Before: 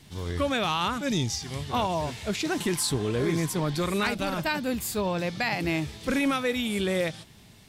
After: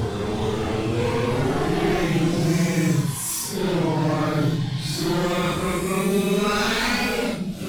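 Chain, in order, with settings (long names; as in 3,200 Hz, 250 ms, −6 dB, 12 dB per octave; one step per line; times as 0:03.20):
wavefolder on the positive side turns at −26.5 dBFS
extreme stretch with random phases 6.3×, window 0.05 s, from 0:02.98
level +5.5 dB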